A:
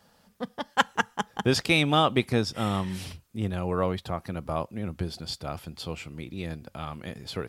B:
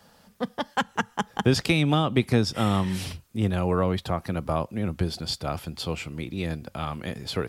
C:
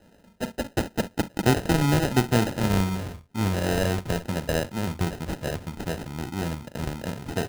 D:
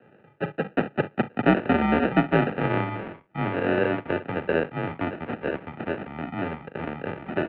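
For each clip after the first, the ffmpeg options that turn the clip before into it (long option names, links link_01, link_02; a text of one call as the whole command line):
ffmpeg -i in.wav -filter_complex "[0:a]acrossover=split=290[link_01][link_02];[link_02]acompressor=threshold=-27dB:ratio=10[link_03];[link_01][link_03]amix=inputs=2:normalize=0,volume=5dB" out.wav
ffmpeg -i in.wav -af "aresample=16000,acrusher=bits=4:mode=log:mix=0:aa=0.000001,aresample=44100,aecho=1:1:41|63:0.237|0.141,acrusher=samples=39:mix=1:aa=0.000001" out.wav
ffmpeg -i in.wav -af "highpass=frequency=250:width_type=q:width=0.5412,highpass=frequency=250:width_type=q:width=1.307,lowpass=frequency=2700:width_type=q:width=0.5176,lowpass=frequency=2700:width_type=q:width=0.7071,lowpass=frequency=2700:width_type=q:width=1.932,afreqshift=-78,volume=4dB" out.wav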